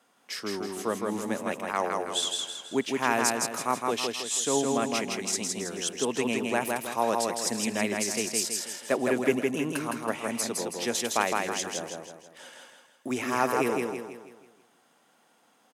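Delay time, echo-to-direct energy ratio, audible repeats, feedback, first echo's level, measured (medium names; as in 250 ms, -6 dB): 162 ms, -2.0 dB, 5, 44%, -3.0 dB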